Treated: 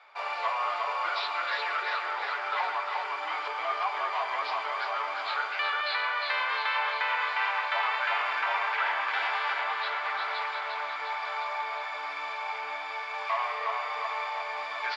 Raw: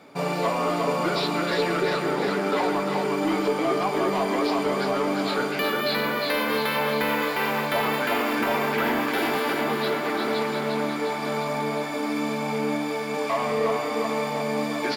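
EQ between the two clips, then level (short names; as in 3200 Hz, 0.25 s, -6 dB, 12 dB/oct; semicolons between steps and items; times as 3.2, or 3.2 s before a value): HPF 850 Hz 24 dB/oct; LPF 3700 Hz 12 dB/oct; air absorption 59 m; 0.0 dB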